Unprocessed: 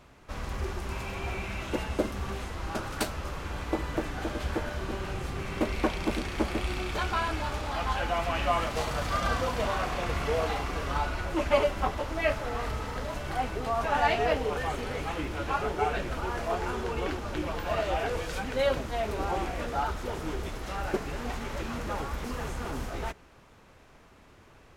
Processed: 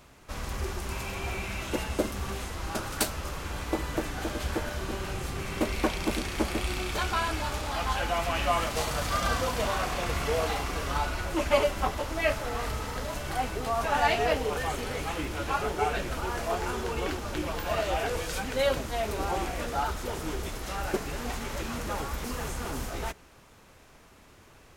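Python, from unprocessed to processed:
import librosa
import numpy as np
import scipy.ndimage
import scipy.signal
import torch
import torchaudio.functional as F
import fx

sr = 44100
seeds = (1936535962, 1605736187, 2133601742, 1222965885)

y = fx.high_shelf(x, sr, hz=5300.0, db=10.5)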